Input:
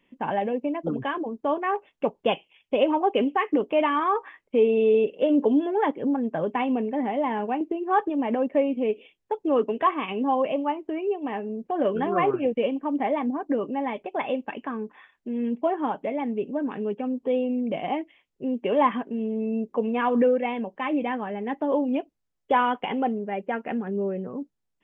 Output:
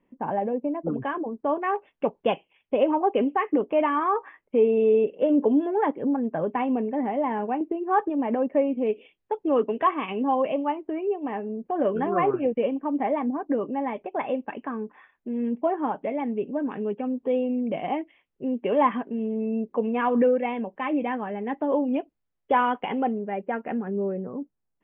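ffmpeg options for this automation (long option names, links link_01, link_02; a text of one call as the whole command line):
ffmpeg -i in.wav -af "asetnsamples=nb_out_samples=441:pad=0,asendcmd='0.89 lowpass f 1900;1.62 lowpass f 2900;2.31 lowpass f 2000;8.87 lowpass f 3100;10.81 lowpass f 2100;16.02 lowpass f 2800;23.32 lowpass f 2100;24.12 lowpass f 1500',lowpass=1200" out.wav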